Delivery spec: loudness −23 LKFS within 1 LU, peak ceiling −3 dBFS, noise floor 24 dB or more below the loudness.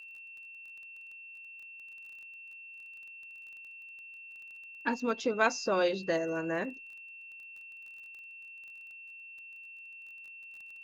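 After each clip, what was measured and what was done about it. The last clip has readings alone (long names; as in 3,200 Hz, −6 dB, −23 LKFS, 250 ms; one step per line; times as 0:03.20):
crackle rate 21 per second; interfering tone 2,700 Hz; level of the tone −46 dBFS; integrated loudness −37.5 LKFS; sample peak −13.5 dBFS; target loudness −23.0 LKFS
→ click removal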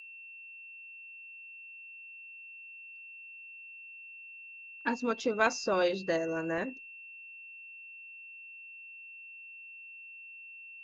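crackle rate 0.092 per second; interfering tone 2,700 Hz; level of the tone −46 dBFS
→ notch filter 2,700 Hz, Q 30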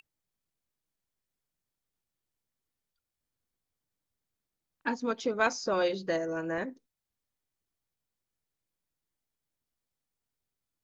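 interfering tone none found; integrated loudness −31.5 LKFS; sample peak −13.5 dBFS; target loudness −23.0 LKFS
→ level +8.5 dB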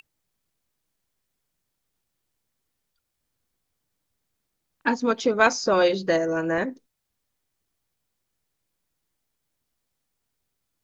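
integrated loudness −23.0 LKFS; sample peak −5.0 dBFS; background noise floor −79 dBFS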